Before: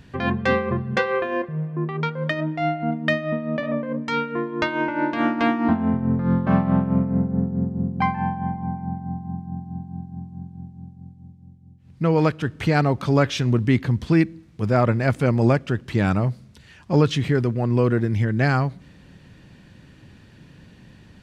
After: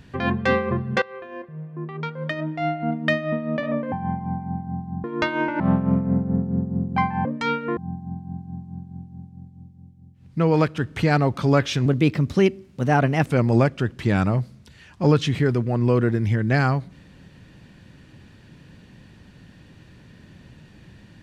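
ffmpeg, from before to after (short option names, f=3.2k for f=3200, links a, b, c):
-filter_complex "[0:a]asplit=9[a][b][c][d][e][f][g][h][i];[a]atrim=end=1.02,asetpts=PTS-STARTPTS,afade=t=out:st=1.016:d=0.004:c=hsin:silence=0.125893[j];[b]atrim=start=1.02:end=3.922,asetpts=PTS-STARTPTS,afade=t=in:d=2.01:silence=0.125893[k];[c]atrim=start=8.288:end=9.412[l];[d]atrim=start=4.438:end=5.002[m];[e]atrim=start=6.638:end=8.292[n];[f]atrim=start=3.918:end=4.442[o];[g]atrim=start=9.408:end=13.504[p];[h]atrim=start=13.5:end=15.15,asetpts=PTS-STARTPTS,asetrate=52038,aresample=44100,atrim=end_sample=61665,asetpts=PTS-STARTPTS[q];[i]atrim=start=15.146[r];[j][k]concat=n=2:v=0:a=1[s];[s][l]acrossfade=d=0.004:c1=hsin:c2=hsin[t];[t][m]acrossfade=d=0.004:c1=hsin:c2=hsin[u];[u][n]acrossfade=d=0.004:c1=hsin:c2=hsin[v];[v][o]acrossfade=d=0.004:c1=hsin:c2=hsin[w];[w][p]acrossfade=d=0.004:c1=hsin:c2=hsin[x];[x][q]acrossfade=d=0.004:c1=hsin:c2=hsin[y];[y][r]acrossfade=d=0.004:c1=hsin:c2=hsin"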